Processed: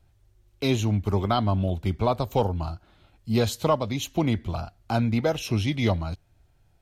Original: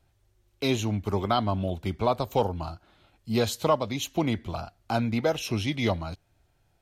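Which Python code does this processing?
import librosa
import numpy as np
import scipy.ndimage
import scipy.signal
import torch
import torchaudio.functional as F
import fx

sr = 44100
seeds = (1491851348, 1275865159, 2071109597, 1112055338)

y = fx.low_shelf(x, sr, hz=160.0, db=8.0)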